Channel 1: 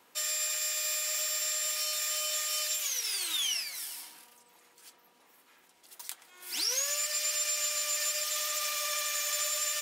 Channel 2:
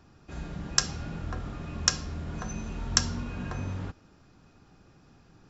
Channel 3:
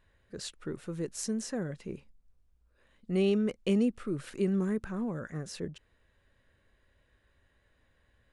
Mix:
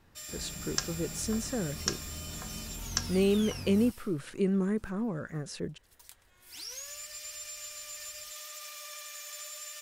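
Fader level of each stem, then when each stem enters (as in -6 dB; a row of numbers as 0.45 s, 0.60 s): -11.5 dB, -7.5 dB, +1.0 dB; 0.00 s, 0.00 s, 0.00 s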